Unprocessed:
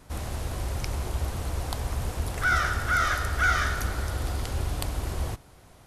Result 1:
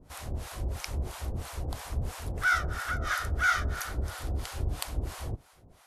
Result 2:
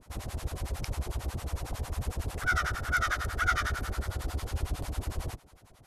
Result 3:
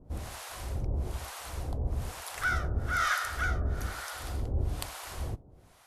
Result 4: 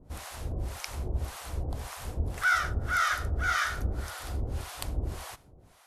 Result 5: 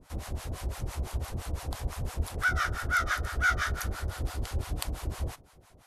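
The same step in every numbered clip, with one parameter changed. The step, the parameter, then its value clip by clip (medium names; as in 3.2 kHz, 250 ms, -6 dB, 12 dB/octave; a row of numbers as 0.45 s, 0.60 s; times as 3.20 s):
harmonic tremolo, rate: 3 Hz, 11 Hz, 1.1 Hz, 1.8 Hz, 5.9 Hz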